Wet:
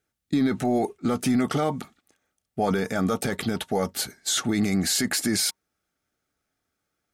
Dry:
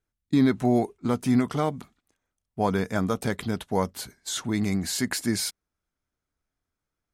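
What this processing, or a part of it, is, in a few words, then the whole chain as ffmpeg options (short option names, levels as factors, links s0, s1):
PA system with an anti-feedback notch: -af "highpass=f=190:p=1,asuperstop=centerf=1000:order=20:qfactor=6.2,alimiter=limit=0.0708:level=0:latency=1:release=12,volume=2.51"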